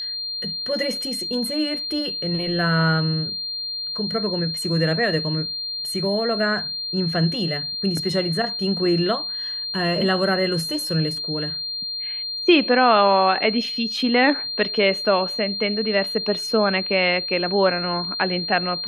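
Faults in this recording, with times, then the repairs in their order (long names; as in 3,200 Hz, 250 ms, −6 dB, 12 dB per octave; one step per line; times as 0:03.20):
whistle 4,200 Hz −26 dBFS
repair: notch filter 4,200 Hz, Q 30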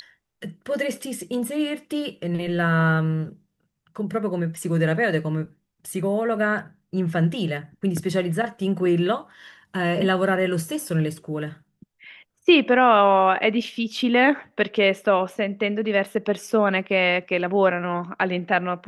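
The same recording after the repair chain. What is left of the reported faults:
none of them is left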